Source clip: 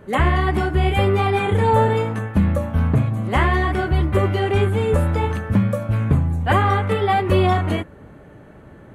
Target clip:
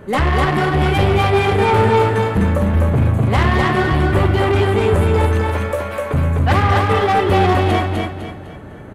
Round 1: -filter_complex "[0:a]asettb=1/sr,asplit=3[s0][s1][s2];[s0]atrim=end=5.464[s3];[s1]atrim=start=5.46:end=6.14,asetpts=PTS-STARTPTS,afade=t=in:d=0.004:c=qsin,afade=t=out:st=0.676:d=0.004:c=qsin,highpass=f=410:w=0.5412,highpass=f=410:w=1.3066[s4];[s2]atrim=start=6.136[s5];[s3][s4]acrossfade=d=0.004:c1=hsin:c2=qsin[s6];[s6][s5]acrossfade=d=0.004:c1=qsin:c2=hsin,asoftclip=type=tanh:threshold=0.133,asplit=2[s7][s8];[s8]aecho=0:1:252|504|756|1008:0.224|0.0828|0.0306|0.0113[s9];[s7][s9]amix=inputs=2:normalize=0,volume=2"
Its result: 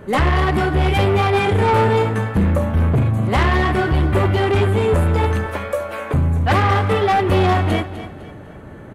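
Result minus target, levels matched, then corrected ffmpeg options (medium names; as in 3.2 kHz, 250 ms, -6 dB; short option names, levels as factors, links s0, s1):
echo-to-direct -10.5 dB
-filter_complex "[0:a]asettb=1/sr,asplit=3[s0][s1][s2];[s0]atrim=end=5.464[s3];[s1]atrim=start=5.46:end=6.14,asetpts=PTS-STARTPTS,afade=t=in:d=0.004:c=qsin,afade=t=out:st=0.676:d=0.004:c=qsin,highpass=f=410:w=0.5412,highpass=f=410:w=1.3066[s4];[s2]atrim=start=6.136[s5];[s3][s4]acrossfade=d=0.004:c1=hsin:c2=qsin[s6];[s6][s5]acrossfade=d=0.004:c1=qsin:c2=hsin,asoftclip=type=tanh:threshold=0.133,asplit=2[s7][s8];[s8]aecho=0:1:252|504|756|1008|1260:0.75|0.277|0.103|0.038|0.0141[s9];[s7][s9]amix=inputs=2:normalize=0,volume=2"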